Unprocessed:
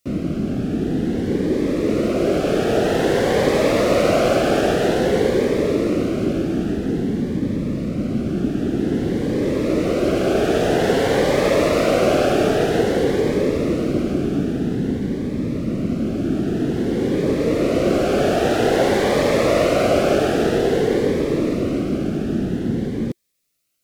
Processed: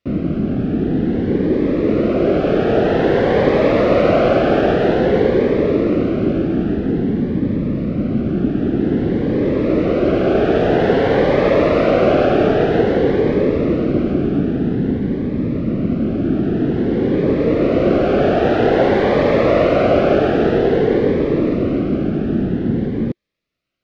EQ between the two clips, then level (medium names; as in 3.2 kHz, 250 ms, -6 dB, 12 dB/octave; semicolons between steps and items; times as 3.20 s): distance through air 290 m; +4.0 dB